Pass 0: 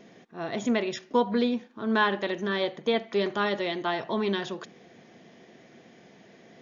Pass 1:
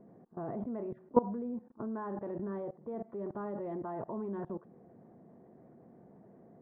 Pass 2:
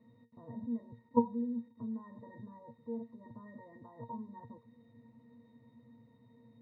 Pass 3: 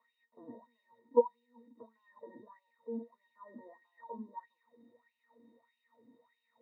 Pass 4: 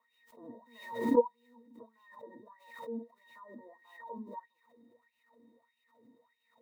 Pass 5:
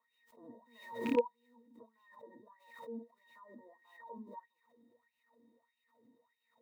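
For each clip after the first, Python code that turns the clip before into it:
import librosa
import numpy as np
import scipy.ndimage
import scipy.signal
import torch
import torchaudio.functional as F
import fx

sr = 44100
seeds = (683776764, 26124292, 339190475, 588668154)

y1 = scipy.signal.sosfilt(scipy.signal.butter(4, 1100.0, 'lowpass', fs=sr, output='sos'), x)
y1 = fx.level_steps(y1, sr, step_db=20)
y1 = fx.low_shelf(y1, sr, hz=190.0, db=8.5)
y2 = y1 + 0.38 * np.pad(y1, (int(1.1 * sr / 1000.0), 0))[:len(y1)]
y2 = fx.quant_dither(y2, sr, seeds[0], bits=10, dither='none')
y2 = fx.octave_resonator(y2, sr, note='A#', decay_s=0.17)
y2 = y2 * 10.0 ** (6.0 / 20.0)
y3 = fx.filter_lfo_highpass(y2, sr, shape='sine', hz=1.6, low_hz=270.0, high_hz=2800.0, q=5.4)
y3 = y3 * 10.0 ** (-4.5 / 20.0)
y4 = fx.pre_swell(y3, sr, db_per_s=84.0)
y5 = fx.rattle_buzz(y4, sr, strikes_db=-34.0, level_db=-24.0)
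y5 = y5 * 10.0 ** (-5.0 / 20.0)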